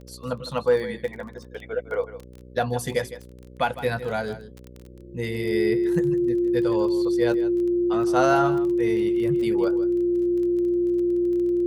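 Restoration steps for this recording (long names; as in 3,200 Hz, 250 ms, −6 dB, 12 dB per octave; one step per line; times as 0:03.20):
click removal
hum removal 62 Hz, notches 9
notch filter 350 Hz, Q 30
echo removal 158 ms −14 dB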